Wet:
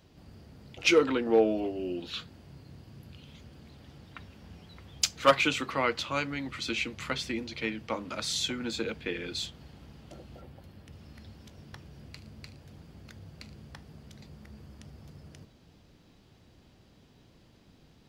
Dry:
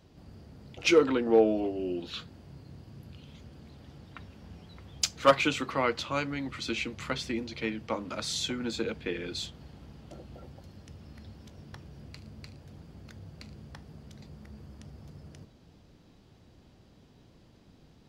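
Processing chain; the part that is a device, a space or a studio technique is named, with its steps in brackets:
0:10.41–0:10.93: parametric band 6,000 Hz −7.5 dB 1.1 octaves
presence and air boost (parametric band 2,500 Hz +3.5 dB 1.9 octaves; high-shelf EQ 9,500 Hz +6.5 dB)
level −1.5 dB

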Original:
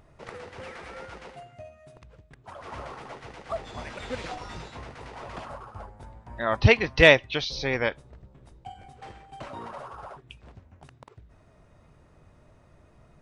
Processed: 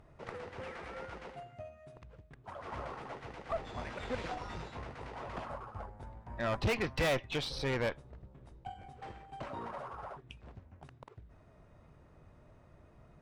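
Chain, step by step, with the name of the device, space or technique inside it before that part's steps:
tube preamp driven hard (tube saturation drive 27 dB, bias 0.55; high-shelf EQ 3,500 Hz −8 dB)

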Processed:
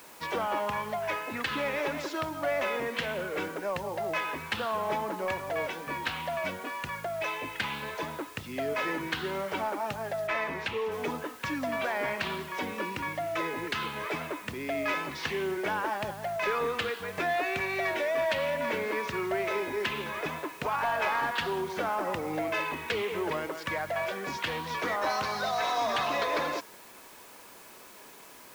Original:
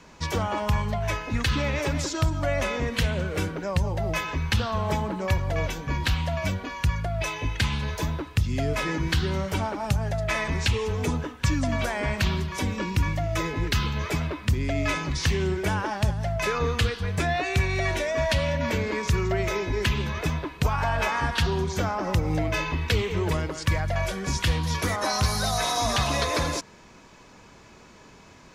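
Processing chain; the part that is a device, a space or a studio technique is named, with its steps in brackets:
tape answering machine (band-pass filter 360–2,900 Hz; soft clipping −20.5 dBFS, distortion −20 dB; tape wow and flutter 25 cents; white noise bed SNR 21 dB)
0:10.27–0:10.92: high-shelf EQ 4,800 Hz −9 dB

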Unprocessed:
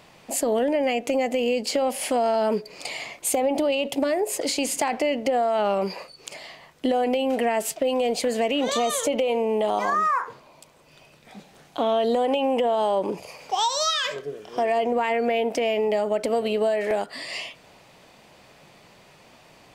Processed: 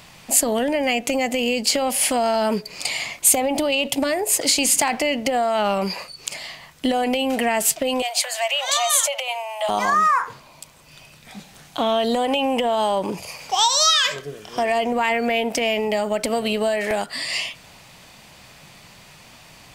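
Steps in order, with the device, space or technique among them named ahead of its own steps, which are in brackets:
smiley-face EQ (low-shelf EQ 180 Hz +4 dB; parametric band 430 Hz −8.5 dB 1.7 octaves; high-shelf EQ 5,100 Hz +6 dB)
0:08.02–0:09.69: Butterworth high-pass 560 Hz 96 dB per octave
level +6.5 dB

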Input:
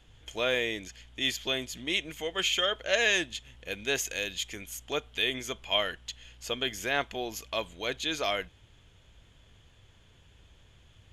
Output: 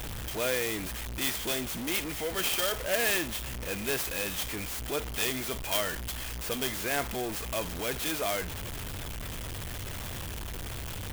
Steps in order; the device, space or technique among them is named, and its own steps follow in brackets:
early CD player with a faulty converter (converter with a step at zero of −27.5 dBFS; converter with an unsteady clock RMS 0.055 ms)
level −4 dB

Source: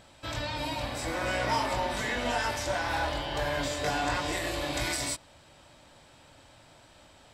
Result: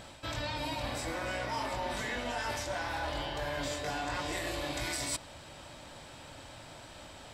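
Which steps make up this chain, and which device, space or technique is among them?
compression on the reversed sound (reversed playback; downward compressor 6 to 1, threshold −40 dBFS, peak gain reduction 15 dB; reversed playback)
level +6.5 dB

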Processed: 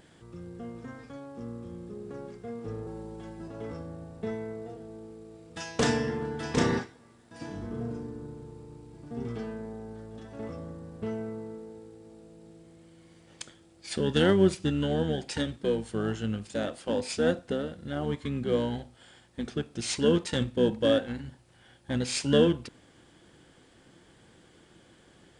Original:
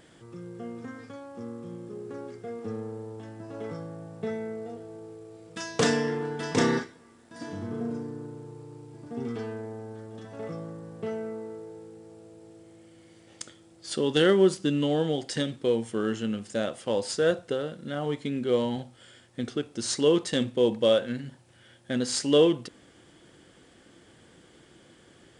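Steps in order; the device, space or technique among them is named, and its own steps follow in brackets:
octave pedal (pitch-shifted copies added −12 semitones −5 dB)
0:02.86–0:03.48: comb filter 5.4 ms, depth 100%
level −3 dB

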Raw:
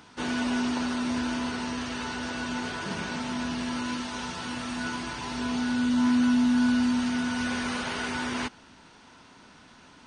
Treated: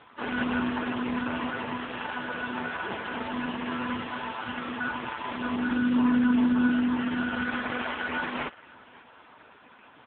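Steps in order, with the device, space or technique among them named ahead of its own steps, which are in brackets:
satellite phone (band-pass filter 330–3,200 Hz; single-tap delay 538 ms −23 dB; level +7 dB; AMR narrowband 4.75 kbit/s 8,000 Hz)

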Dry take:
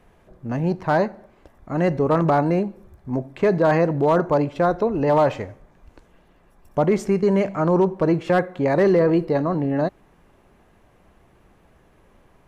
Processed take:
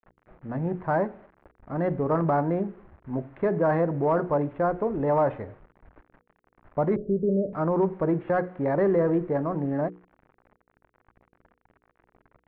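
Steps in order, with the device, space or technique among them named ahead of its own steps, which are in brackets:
early 8-bit sampler (sample-rate reduction 6,100 Hz, jitter 0%; bit reduction 8 bits)
low-pass filter 1,900 Hz 24 dB per octave
mains-hum notches 60/120/180/240/300/360/420/480 Hz
0:06.96–0:07.53: Butterworth low-pass 620 Hz 96 dB per octave
level −5 dB

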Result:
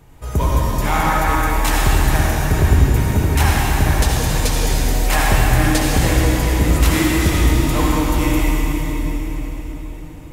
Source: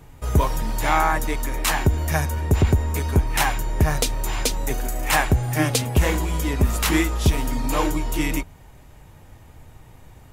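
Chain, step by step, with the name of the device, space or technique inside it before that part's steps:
cathedral (convolution reverb RT60 4.7 s, pre-delay 57 ms, DRR −5 dB)
level −1.5 dB

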